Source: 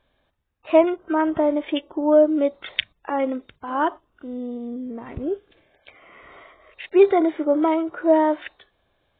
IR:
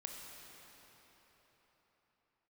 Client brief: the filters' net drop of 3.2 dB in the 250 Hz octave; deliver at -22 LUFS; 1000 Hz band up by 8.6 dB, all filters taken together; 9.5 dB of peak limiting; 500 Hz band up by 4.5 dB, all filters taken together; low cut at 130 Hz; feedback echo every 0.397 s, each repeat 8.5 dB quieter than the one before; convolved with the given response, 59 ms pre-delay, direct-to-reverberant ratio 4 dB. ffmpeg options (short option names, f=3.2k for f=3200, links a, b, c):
-filter_complex "[0:a]highpass=130,equalizer=f=250:t=o:g=-8,equalizer=f=500:t=o:g=4.5,equalizer=f=1k:t=o:g=9,alimiter=limit=-8.5dB:level=0:latency=1,aecho=1:1:397|794|1191|1588:0.376|0.143|0.0543|0.0206,asplit=2[a][b];[1:a]atrim=start_sample=2205,adelay=59[c];[b][c]afir=irnorm=-1:irlink=0,volume=-1.5dB[d];[a][d]amix=inputs=2:normalize=0,volume=-3dB"